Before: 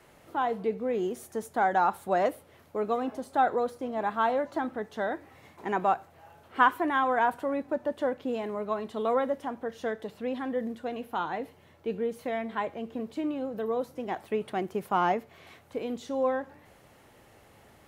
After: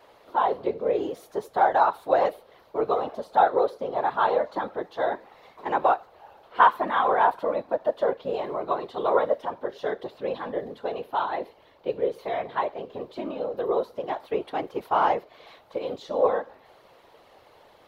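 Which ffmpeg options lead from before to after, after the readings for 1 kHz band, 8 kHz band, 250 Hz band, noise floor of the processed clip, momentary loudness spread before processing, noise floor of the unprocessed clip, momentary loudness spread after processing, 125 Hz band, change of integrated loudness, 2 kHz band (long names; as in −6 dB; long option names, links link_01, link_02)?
+4.5 dB, can't be measured, −3.5 dB, −56 dBFS, 10 LU, −58 dBFS, 12 LU, −1.0 dB, +4.0 dB, +1.0 dB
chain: -af "equalizer=frequency=125:width_type=o:width=1:gain=-7,equalizer=frequency=250:width_type=o:width=1:gain=-4,equalizer=frequency=500:width_type=o:width=1:gain=9,equalizer=frequency=1000:width_type=o:width=1:gain=8,equalizer=frequency=4000:width_type=o:width=1:gain=11,equalizer=frequency=8000:width_type=o:width=1:gain=-7,afftfilt=real='hypot(re,im)*cos(2*PI*random(0))':imag='hypot(re,im)*sin(2*PI*random(1))':win_size=512:overlap=0.75,volume=2dB"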